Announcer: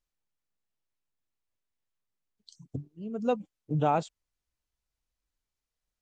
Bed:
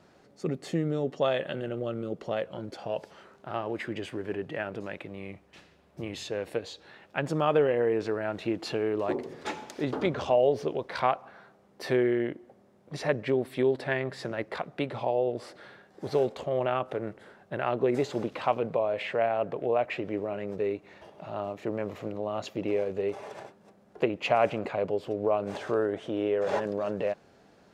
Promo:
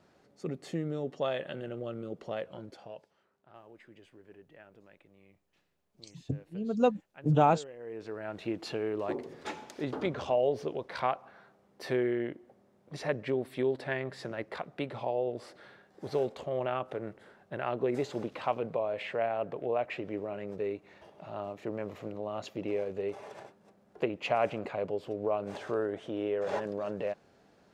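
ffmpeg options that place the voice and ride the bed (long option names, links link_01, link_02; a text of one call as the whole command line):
ffmpeg -i stem1.wav -i stem2.wav -filter_complex "[0:a]adelay=3550,volume=2.5dB[link_01];[1:a]volume=11dB,afade=type=out:start_time=2.52:duration=0.56:silence=0.16788,afade=type=in:start_time=7.79:duration=0.71:silence=0.149624[link_02];[link_01][link_02]amix=inputs=2:normalize=0" out.wav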